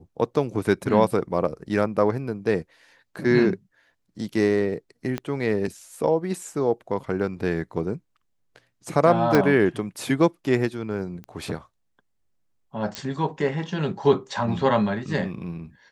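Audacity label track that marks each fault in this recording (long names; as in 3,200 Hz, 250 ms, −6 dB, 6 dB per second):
5.180000	5.180000	click −14 dBFS
9.350000	9.350000	click −6 dBFS
11.240000	11.240000	click −27 dBFS
12.950000	12.950000	click −13 dBFS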